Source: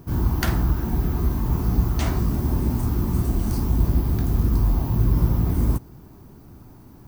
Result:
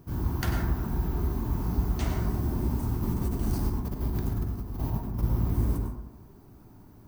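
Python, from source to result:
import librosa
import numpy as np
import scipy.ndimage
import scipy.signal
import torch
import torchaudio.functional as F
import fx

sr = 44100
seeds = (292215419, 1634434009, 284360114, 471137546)

y = fx.over_compress(x, sr, threshold_db=-22.0, ratio=-0.5, at=(2.96, 5.23))
y = fx.rev_plate(y, sr, seeds[0], rt60_s=0.86, hf_ratio=0.35, predelay_ms=85, drr_db=2.5)
y = y * 10.0 ** (-8.0 / 20.0)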